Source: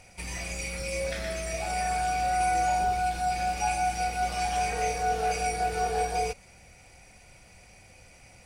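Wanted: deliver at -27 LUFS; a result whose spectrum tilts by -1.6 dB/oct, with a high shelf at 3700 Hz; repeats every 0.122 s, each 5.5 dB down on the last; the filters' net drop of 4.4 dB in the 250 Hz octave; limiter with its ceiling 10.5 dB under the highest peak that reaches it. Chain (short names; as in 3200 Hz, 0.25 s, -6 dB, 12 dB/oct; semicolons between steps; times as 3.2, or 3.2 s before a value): bell 250 Hz -7.5 dB; high shelf 3700 Hz +7.5 dB; limiter -24.5 dBFS; feedback echo 0.122 s, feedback 53%, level -5.5 dB; gain +4.5 dB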